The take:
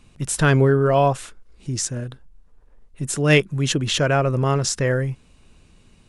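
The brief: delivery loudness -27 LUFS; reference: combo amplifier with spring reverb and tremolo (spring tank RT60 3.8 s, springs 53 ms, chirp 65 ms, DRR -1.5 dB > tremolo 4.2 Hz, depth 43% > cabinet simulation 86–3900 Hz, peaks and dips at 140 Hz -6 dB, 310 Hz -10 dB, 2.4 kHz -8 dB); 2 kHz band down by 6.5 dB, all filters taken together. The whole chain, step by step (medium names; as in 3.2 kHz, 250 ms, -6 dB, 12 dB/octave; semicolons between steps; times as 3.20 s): peaking EQ 2 kHz -6.5 dB; spring tank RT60 3.8 s, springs 53 ms, chirp 65 ms, DRR -1.5 dB; tremolo 4.2 Hz, depth 43%; cabinet simulation 86–3900 Hz, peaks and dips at 140 Hz -6 dB, 310 Hz -10 dB, 2.4 kHz -8 dB; trim -4.5 dB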